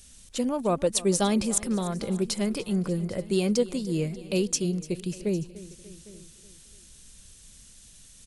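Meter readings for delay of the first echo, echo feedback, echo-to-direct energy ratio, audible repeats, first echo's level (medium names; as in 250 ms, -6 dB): 294 ms, no regular repeats, -15.0 dB, 5, -18.0 dB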